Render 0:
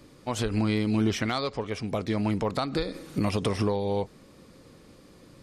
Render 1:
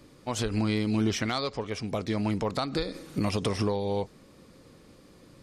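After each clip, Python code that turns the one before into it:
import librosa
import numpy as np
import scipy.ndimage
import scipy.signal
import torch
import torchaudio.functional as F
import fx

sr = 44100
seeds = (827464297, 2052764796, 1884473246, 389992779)

y = fx.dynamic_eq(x, sr, hz=5800.0, q=1.1, threshold_db=-51.0, ratio=4.0, max_db=4)
y = F.gain(torch.from_numpy(y), -1.5).numpy()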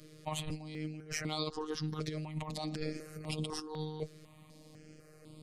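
y = fx.over_compress(x, sr, threshold_db=-31.0, ratio=-0.5)
y = fx.robotise(y, sr, hz=154.0)
y = fx.phaser_held(y, sr, hz=4.0, low_hz=240.0, high_hz=5900.0)
y = F.gain(torch.from_numpy(y), -1.0).numpy()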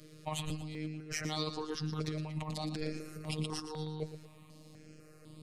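y = fx.echo_feedback(x, sr, ms=116, feedback_pct=37, wet_db=-10.5)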